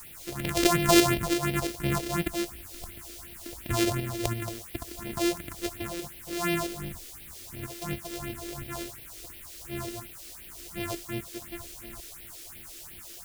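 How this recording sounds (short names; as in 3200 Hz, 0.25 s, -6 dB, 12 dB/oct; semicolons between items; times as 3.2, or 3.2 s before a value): a buzz of ramps at a fixed pitch in blocks of 128 samples; tremolo saw up 3 Hz, depth 50%; a quantiser's noise floor 8-bit, dither triangular; phasing stages 4, 2.8 Hz, lowest notch 140–1200 Hz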